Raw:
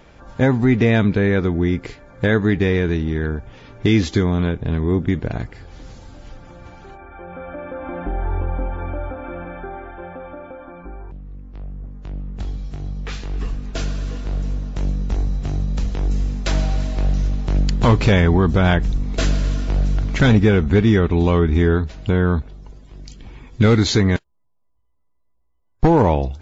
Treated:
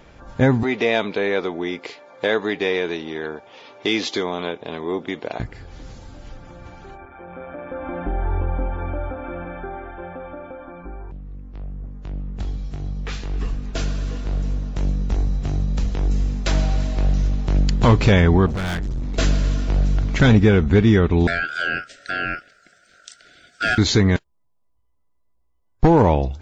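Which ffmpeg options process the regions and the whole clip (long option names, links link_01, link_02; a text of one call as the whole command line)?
ffmpeg -i in.wav -filter_complex "[0:a]asettb=1/sr,asplit=3[link_01][link_02][link_03];[link_01]atrim=end=0.634[link_04];[link_02]atrim=start=0.63:end=5.4,asetpts=PTS-STARTPTS,afade=type=in:duration=0.004:curve=qsin,afade=type=out:start_time=4.766:duration=0.004:curve=qsin,highpass=650,lowpass=4800,equalizer=frequency=1600:width=1.4:gain=-9.5,acontrast=88[link_05];[link_03]atrim=start=5.396[link_06];[link_04][link_05]acrossfade=duration=0.004:curve1=hsin:curve2=qsin[link_07];[link_07][link_06]acrossfade=duration=0.004:curve1=qsin:curve2=hsin,asettb=1/sr,asplit=3[link_08][link_09][link_10];[link_08]atrim=end=7.054[link_11];[link_09]atrim=start=7.05:end=7.71,asetpts=PTS-STARTPTS,afade=type=in:duration=0.004:curve=qsin,afade=type=out:start_time=0.656:duration=0.004:curve=qsin,highpass=83,tremolo=f=130:d=0.519[link_12];[link_10]atrim=start=7.706[link_13];[link_11][link_12]acrossfade=duration=0.004:curve1=hsin:curve2=qsin[link_14];[link_14][link_13]acrossfade=duration=0.004:curve1=qsin:curve2=hsin,asettb=1/sr,asplit=3[link_15][link_16][link_17];[link_15]atrim=end=18.464[link_18];[link_16]atrim=start=18.46:end=19.16,asetpts=PTS-STARTPTS,afade=type=in:duration=0.004:curve=qsin,afade=type=out:start_time=0.696:duration=0.004:curve=qsin,equalizer=frequency=610:width_type=o:width=0.25:gain=-9,volume=22.5dB,asoftclip=hard,volume=-22.5dB[link_19];[link_17]atrim=start=19.156[link_20];[link_18][link_19]acrossfade=duration=0.004:curve1=hsin:curve2=qsin[link_21];[link_21][link_20]acrossfade=duration=0.004:curve1=qsin:curve2=hsin,asettb=1/sr,asplit=3[link_22][link_23][link_24];[link_22]atrim=end=21.274[link_25];[link_23]atrim=start=21.27:end=23.78,asetpts=PTS-STARTPTS,afade=type=in:duration=0.004:curve=qsin,afade=type=out:start_time=2.506:duration=0.004:curve=qsin,highshelf=frequency=4100:gain=10,aeval=exprs='val(0)*sin(2*PI*1200*n/s)':channel_layout=same,asuperstop=centerf=1000:order=20:qfactor=1.5[link_26];[link_24]atrim=start=23.776[link_27];[link_25][link_26]acrossfade=duration=0.004:curve1=hsin:curve2=qsin[link_28];[link_28][link_27]acrossfade=duration=0.004:curve1=qsin:curve2=hsin" out.wav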